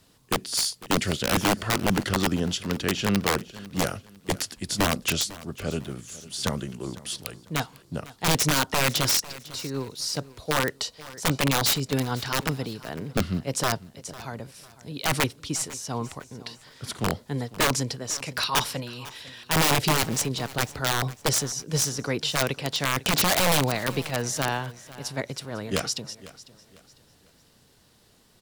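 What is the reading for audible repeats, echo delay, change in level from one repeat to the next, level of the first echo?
2, 500 ms, -9.5 dB, -18.5 dB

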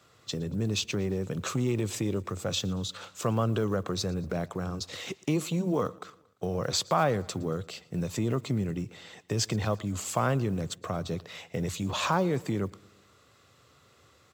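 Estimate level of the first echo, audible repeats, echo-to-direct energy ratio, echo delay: -23.5 dB, 3, -22.0 dB, 115 ms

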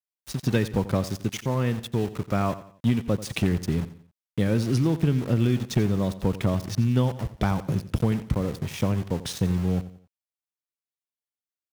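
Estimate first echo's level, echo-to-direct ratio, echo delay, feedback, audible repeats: -15.0 dB, -14.5 dB, 88 ms, 38%, 3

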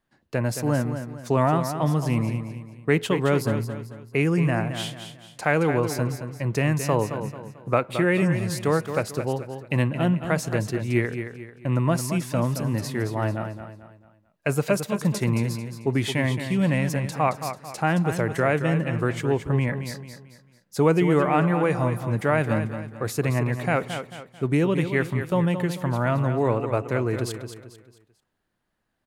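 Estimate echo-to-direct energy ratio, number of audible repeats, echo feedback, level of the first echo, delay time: -8.5 dB, 4, 38%, -9.0 dB, 221 ms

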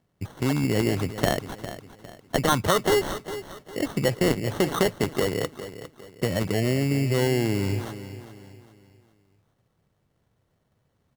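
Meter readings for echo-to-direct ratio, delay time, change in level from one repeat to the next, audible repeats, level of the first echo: -12.5 dB, 405 ms, -8.5 dB, 3, -13.0 dB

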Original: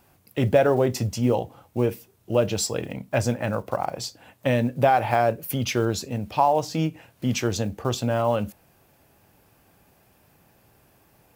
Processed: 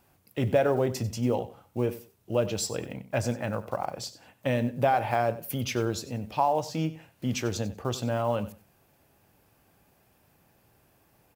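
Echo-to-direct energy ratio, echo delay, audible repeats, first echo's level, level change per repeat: -16.0 dB, 94 ms, 2, -16.0 dB, -14.5 dB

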